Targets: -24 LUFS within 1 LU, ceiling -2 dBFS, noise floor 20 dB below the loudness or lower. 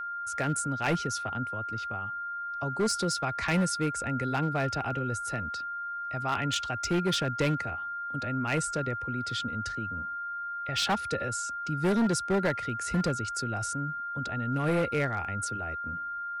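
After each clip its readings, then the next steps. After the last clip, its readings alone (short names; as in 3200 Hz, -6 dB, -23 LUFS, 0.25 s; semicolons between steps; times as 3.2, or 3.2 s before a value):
clipped 1.6%; flat tops at -21.5 dBFS; steady tone 1400 Hz; tone level -33 dBFS; loudness -30.5 LUFS; peak -21.5 dBFS; loudness target -24.0 LUFS
-> clip repair -21.5 dBFS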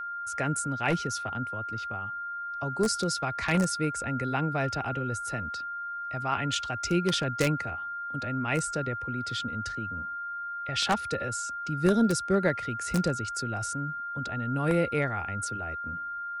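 clipped 0.0%; steady tone 1400 Hz; tone level -33 dBFS
-> notch 1400 Hz, Q 30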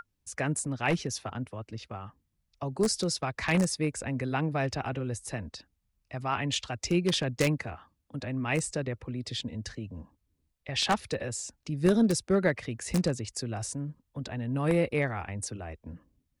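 steady tone none; loudness -30.5 LUFS; peak -12.0 dBFS; loudness target -24.0 LUFS
-> gain +6.5 dB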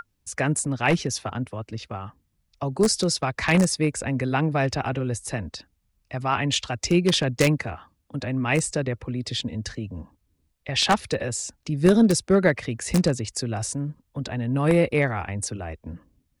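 loudness -24.0 LUFS; peak -5.5 dBFS; noise floor -72 dBFS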